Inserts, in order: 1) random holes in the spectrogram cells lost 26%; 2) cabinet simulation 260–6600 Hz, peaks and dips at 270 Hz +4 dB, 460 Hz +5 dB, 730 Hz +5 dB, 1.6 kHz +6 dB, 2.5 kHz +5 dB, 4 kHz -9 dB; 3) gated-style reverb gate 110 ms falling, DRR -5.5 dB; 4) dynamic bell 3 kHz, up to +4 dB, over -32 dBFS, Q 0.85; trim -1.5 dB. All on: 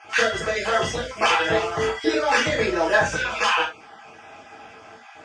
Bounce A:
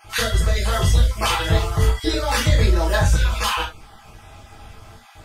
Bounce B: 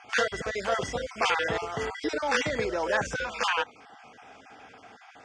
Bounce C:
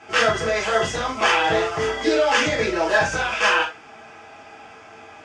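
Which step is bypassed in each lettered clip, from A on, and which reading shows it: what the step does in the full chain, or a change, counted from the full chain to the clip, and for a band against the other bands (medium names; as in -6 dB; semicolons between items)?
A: 2, 125 Hz band +18.0 dB; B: 3, momentary loudness spread change +1 LU; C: 1, loudness change +1.5 LU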